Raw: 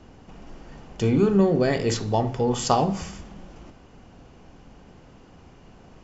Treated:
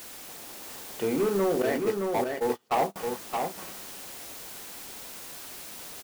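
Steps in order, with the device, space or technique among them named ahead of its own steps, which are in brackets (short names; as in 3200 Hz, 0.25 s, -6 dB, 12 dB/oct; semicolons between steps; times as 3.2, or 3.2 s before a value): aircraft radio (BPF 370–2300 Hz; hard clip -21 dBFS, distortion -11 dB; white noise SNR 12 dB); 1.62–2.96 gate -26 dBFS, range -33 dB; echo 0.619 s -4.5 dB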